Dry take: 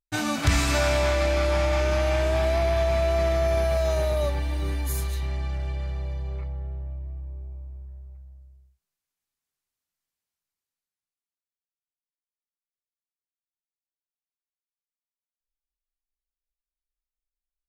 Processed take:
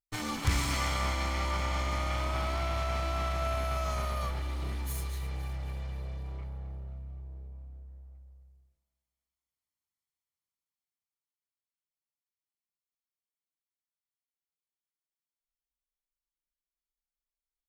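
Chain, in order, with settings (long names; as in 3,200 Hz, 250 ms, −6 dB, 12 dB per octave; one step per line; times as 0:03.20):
lower of the sound and its delayed copy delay 0.93 ms
echo with a time of its own for lows and highs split 590 Hz, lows 173 ms, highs 262 ms, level −15 dB
level −6 dB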